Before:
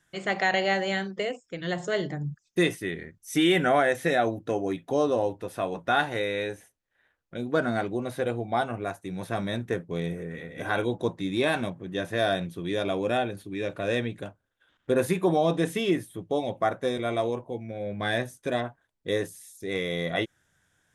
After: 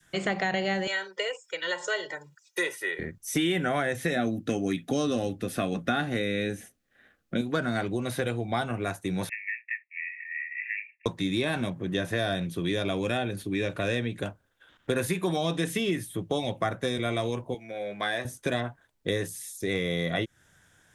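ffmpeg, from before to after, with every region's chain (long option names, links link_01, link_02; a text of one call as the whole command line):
ffmpeg -i in.wav -filter_complex "[0:a]asettb=1/sr,asplit=3[link_01][link_02][link_03];[link_01]atrim=end=0.874[link_04];[link_02]atrim=start=0.87:end=2.99,asetpts=PTS-STARTPTS,afade=type=in:duration=0.004:curve=qsin,afade=type=out:start_time=2.116:duration=0.004:curve=qsin,highpass=910,aecho=1:1:2.1:0.91,atrim=end_sample=93492[link_05];[link_03]atrim=start=2.986[link_06];[link_04][link_05]acrossfade=duration=0.004:curve1=hsin:curve2=qsin[link_07];[link_07][link_06]acrossfade=duration=0.004:curve1=qsin:curve2=hsin,asettb=1/sr,asplit=3[link_08][link_09][link_10];[link_08]atrim=end=4.164[link_11];[link_09]atrim=start=4.16:end=7.41,asetpts=PTS-STARTPTS,afade=type=in:duration=0.004:curve=qsin,afade=type=out:start_time=3.246:duration=0.004:curve=qsin,asuperstop=centerf=940:order=4:qfactor=4.6,equalizer=frequency=230:width_type=o:width=0.79:gain=10.5[link_12];[link_10]atrim=start=7.406[link_13];[link_11][link_12]acrossfade=duration=0.004:curve1=hsin:curve2=qsin[link_14];[link_14][link_13]acrossfade=duration=0.004:curve1=qsin:curve2=hsin,asettb=1/sr,asplit=3[link_15][link_16][link_17];[link_15]atrim=end=9.294[link_18];[link_16]atrim=start=9.29:end=11.06,asetpts=PTS-STARTPTS,afade=type=in:duration=0.004:curve=qsin,afade=type=out:start_time=1.766:duration=0.004:curve=qsin,asuperpass=centerf=2200:order=20:qfactor=2.3,acontrast=23[link_19];[link_17]atrim=start=11.056[link_20];[link_18][link_19]acrossfade=duration=0.004:curve1=hsin:curve2=qsin[link_21];[link_21][link_20]acrossfade=duration=0.004:curve1=qsin:curve2=hsin,asettb=1/sr,asplit=3[link_22][link_23][link_24];[link_22]atrim=end=17.544[link_25];[link_23]atrim=start=17.54:end=18.25,asetpts=PTS-STARTPTS,afade=type=in:duration=0.004:curve=qsin,afade=type=out:start_time=0.706:duration=0.004:curve=qsin,highpass=frequency=1200:poles=1,asplit=2[link_26][link_27];[link_27]adelay=15,volume=-13dB[link_28];[link_26][link_28]amix=inputs=2:normalize=0,atrim=end_sample=31311[link_29];[link_24]atrim=start=18.246[link_30];[link_25][link_29]acrossfade=duration=0.004:curve1=hsin:curve2=qsin[link_31];[link_31][link_30]acrossfade=duration=0.004:curve1=qsin:curve2=hsin,adynamicequalizer=threshold=0.0112:dfrequency=770:dqfactor=0.73:tfrequency=770:tqfactor=0.73:attack=5:release=100:ratio=0.375:range=2.5:mode=cutabove:tftype=bell,acrossover=split=190|1300[link_32][link_33][link_34];[link_32]acompressor=threshold=-42dB:ratio=4[link_35];[link_33]acompressor=threshold=-38dB:ratio=4[link_36];[link_34]acompressor=threshold=-41dB:ratio=4[link_37];[link_35][link_36][link_37]amix=inputs=3:normalize=0,volume=8dB" out.wav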